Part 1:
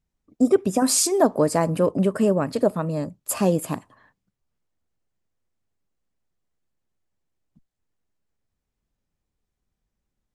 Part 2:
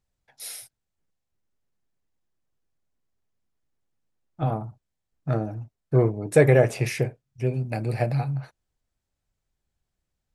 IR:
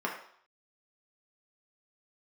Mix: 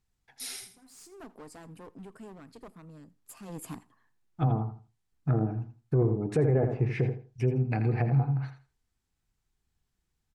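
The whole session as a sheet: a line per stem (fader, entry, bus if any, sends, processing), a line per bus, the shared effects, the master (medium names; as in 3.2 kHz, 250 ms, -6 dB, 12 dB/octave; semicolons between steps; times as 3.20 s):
3.41 s -21.5 dB -> 3.63 s -10 dB, 0.00 s, no send, echo send -23.5 dB, high-pass 71 Hz; one-sided clip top -22.5 dBFS; auto duck -19 dB, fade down 0.50 s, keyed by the second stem
+1.0 dB, 0.00 s, no send, echo send -10.5 dB, low-pass that closes with the level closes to 810 Hz, closed at -20.5 dBFS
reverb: none
echo: feedback delay 82 ms, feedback 21%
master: peaking EQ 580 Hz -14.5 dB 0.27 oct; peak limiter -16.5 dBFS, peak gain reduction 9.5 dB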